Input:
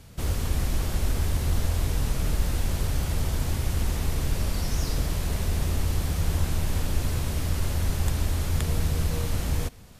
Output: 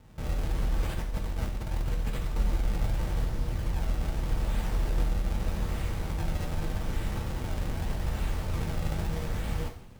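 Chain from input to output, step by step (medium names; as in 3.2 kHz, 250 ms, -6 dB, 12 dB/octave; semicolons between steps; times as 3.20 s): 0.83–2.38 s: compressor with a negative ratio -26 dBFS, ratio -0.5; 3.24–4.25 s: low-pass 1.7 kHz 6 dB/octave; decimation with a swept rate 37×, swing 160% 0.82 Hz; two-slope reverb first 0.52 s, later 2 s, from -16 dB, DRR 1.5 dB; trim -6.5 dB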